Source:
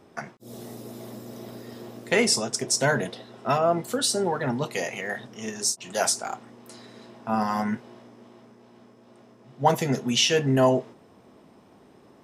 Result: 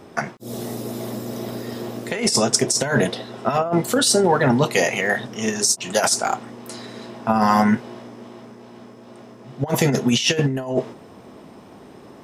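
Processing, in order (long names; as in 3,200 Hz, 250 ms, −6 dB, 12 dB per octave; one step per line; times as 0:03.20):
compressor whose output falls as the input rises −25 dBFS, ratio −0.5
level +8 dB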